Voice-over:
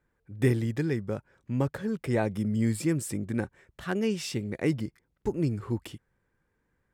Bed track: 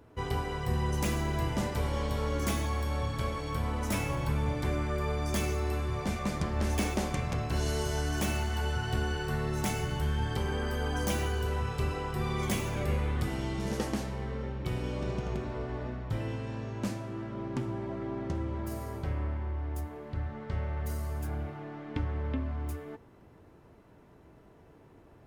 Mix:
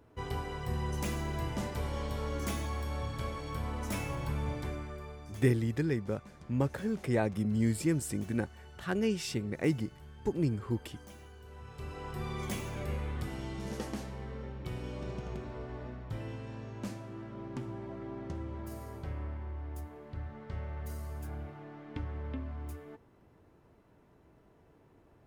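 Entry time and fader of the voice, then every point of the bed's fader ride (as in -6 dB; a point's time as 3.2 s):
5.00 s, -2.5 dB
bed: 4.54 s -4.5 dB
5.49 s -21 dB
11.42 s -21 dB
12.09 s -6 dB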